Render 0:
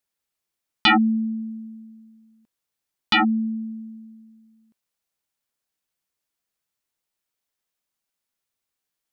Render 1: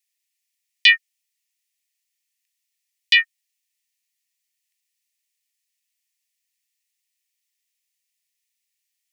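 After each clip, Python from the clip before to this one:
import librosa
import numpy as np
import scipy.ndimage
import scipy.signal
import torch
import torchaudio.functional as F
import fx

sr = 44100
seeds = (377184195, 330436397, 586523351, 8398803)

y = scipy.signal.sosfilt(scipy.signal.cheby1(6, 3, 1800.0, 'highpass', fs=sr, output='sos'), x)
y = y * 10.0 ** (7.0 / 20.0)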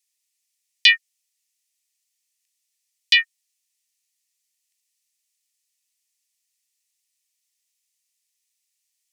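y = fx.peak_eq(x, sr, hz=7300.0, db=11.0, octaves=2.5)
y = y * 10.0 ** (-6.0 / 20.0)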